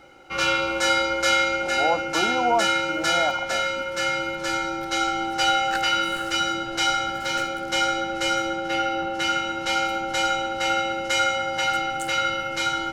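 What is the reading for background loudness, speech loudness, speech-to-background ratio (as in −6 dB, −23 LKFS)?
−23.0 LKFS, −27.5 LKFS, −4.5 dB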